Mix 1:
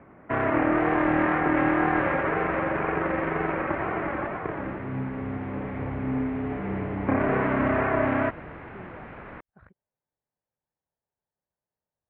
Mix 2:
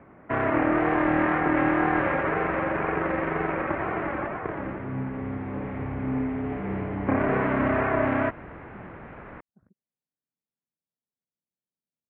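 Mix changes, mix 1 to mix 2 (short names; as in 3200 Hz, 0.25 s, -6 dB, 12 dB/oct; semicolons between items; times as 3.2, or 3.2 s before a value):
speech: add band-pass 230 Hz, Q 1.9; second sound: add air absorption 230 m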